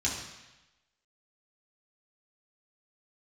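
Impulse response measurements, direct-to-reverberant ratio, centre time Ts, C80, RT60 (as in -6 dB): -6.0 dB, 45 ms, 6.0 dB, 1.0 s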